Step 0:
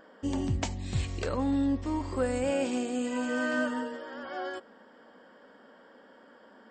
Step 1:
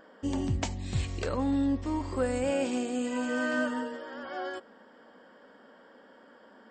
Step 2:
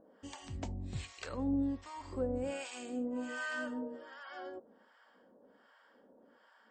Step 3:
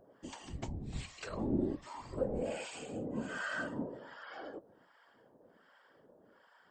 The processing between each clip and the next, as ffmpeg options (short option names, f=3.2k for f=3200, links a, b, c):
-af anull
-filter_complex "[0:a]acrossover=split=780[a][b];[a]aeval=exprs='val(0)*(1-1/2+1/2*cos(2*PI*1.3*n/s))':c=same[c];[b]aeval=exprs='val(0)*(1-1/2-1/2*cos(2*PI*1.3*n/s))':c=same[d];[c][d]amix=inputs=2:normalize=0,volume=-4dB"
-af "bandreject=f=60:t=h:w=6,bandreject=f=120:t=h:w=6,bandreject=f=180:t=h:w=6,bandreject=f=240:t=h:w=6,afftfilt=real='hypot(re,im)*cos(2*PI*random(0))':imag='hypot(re,im)*sin(2*PI*random(1))':win_size=512:overlap=0.75,volume=6dB"